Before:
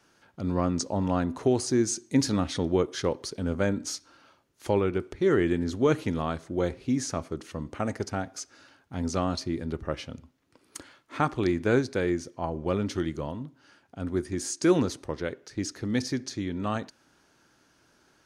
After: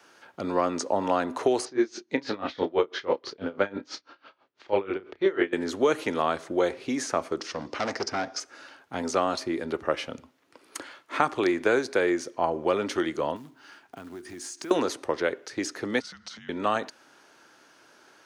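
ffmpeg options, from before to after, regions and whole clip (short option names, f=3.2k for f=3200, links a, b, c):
-filter_complex "[0:a]asettb=1/sr,asplit=3[a][b][c];[a]atrim=end=1.654[d];[b]atrim=start=1.65:end=5.53,asetpts=PTS-STARTPTS,afade=t=in:d=0.004:c=qsin,afade=t=out:st=3.876:d=0.004:c=qsin,lowpass=f=4.5k:w=0.5412,lowpass=f=4.5k:w=1.3066,asplit=2[e][f];[f]adelay=31,volume=-4.5dB[g];[e][g]amix=inputs=2:normalize=0,atrim=end_sample=171108,aeval=exprs='val(0)*pow(10,-23*(0.5-0.5*cos(2*PI*6.1*n/s))/20)':c=same[h];[c]atrim=start=5.526[i];[d][h]acrossfade=d=0.004:c1=hsin:c2=qsin[j];[j][i]acrossfade=d=0.004:c1=qsin:c2=hsin,asettb=1/sr,asplit=3[k][l][m];[k]atrim=end=7.404[n];[l]atrim=start=7.4:end=8.4,asetpts=PTS-STARTPTS,afade=t=in:d=0.004:c=qsin,afade=t=out:st=0.996:d=0.004:c=qsin,asoftclip=type=hard:threshold=-30.5dB,lowpass=f=5.3k:t=q:w=4.8[o];[m]atrim=start=8.396[p];[n][o]acrossfade=d=0.004:c1=hsin:c2=qsin[q];[q][p]acrossfade=d=0.004:c1=qsin:c2=hsin,asettb=1/sr,asplit=3[r][s][t];[r]atrim=end=13.364[u];[s]atrim=start=13.36:end=14.71,asetpts=PTS-STARTPTS,afade=t=in:d=0.004:c=qsin,afade=t=out:st=1.346:d=0.004:c=qsin,acompressor=threshold=-39dB:ratio=12:attack=3.2:release=140:knee=1:detection=peak,acrusher=bits=6:mode=log:mix=0:aa=0.000001,equalizer=f=540:t=o:w=0.26:g=-10[v];[t]atrim=start=14.706[w];[u][v]acrossfade=d=0.004:c1=hsin:c2=qsin[x];[x][w]acrossfade=d=0.004:c1=qsin:c2=hsin,asettb=1/sr,asplit=3[y][z][aa];[y]atrim=end=16.004[ab];[z]atrim=start=16:end=16.49,asetpts=PTS-STARTPTS,afade=t=in:d=0.004:c=qsin,afade=t=out:st=0.486:d=0.004:c=qsin,acompressor=threshold=-40dB:ratio=8:attack=3.2:release=140:knee=1:detection=peak,afreqshift=-330,highpass=120,lowpass=7.1k[ac];[aa]atrim=start=16.486[ad];[ab][ac]acrossfade=d=0.004:c1=hsin:c2=qsin[ae];[ae][ad]acrossfade=d=0.004:c1=qsin:c2=hsin,highpass=88,bass=f=250:g=-15,treble=f=4k:g=-4,acrossover=split=290|2800|6800[af][ag][ah][ai];[af]acompressor=threshold=-47dB:ratio=4[aj];[ag]acompressor=threshold=-29dB:ratio=4[ak];[ah]acompressor=threshold=-50dB:ratio=4[al];[ai]acompressor=threshold=-48dB:ratio=4[am];[aj][ak][al][am]amix=inputs=4:normalize=0,volume=9dB"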